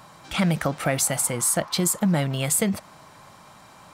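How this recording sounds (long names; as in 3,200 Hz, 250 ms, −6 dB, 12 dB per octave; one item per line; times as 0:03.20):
background noise floor −49 dBFS
spectral slope −4.0 dB per octave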